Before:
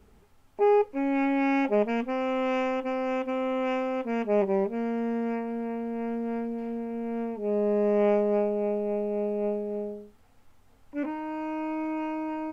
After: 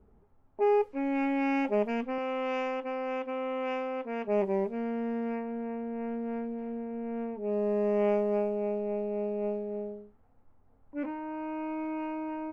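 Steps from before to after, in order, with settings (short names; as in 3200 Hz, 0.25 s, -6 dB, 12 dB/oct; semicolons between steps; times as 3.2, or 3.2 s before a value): 2.18–4.28 tone controls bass -9 dB, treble +4 dB; low-pass opened by the level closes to 960 Hz, open at -20 dBFS; gain -3.5 dB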